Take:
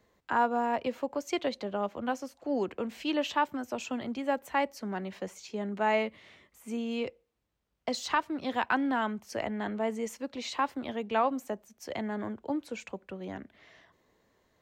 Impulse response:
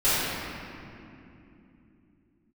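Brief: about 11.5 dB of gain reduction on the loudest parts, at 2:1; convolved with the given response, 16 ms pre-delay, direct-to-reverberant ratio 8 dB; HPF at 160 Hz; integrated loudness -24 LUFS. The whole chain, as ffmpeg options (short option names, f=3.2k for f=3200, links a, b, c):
-filter_complex "[0:a]highpass=160,acompressor=threshold=-44dB:ratio=2,asplit=2[a][b];[1:a]atrim=start_sample=2205,adelay=16[c];[b][c]afir=irnorm=-1:irlink=0,volume=-25.5dB[d];[a][d]amix=inputs=2:normalize=0,volume=17.5dB"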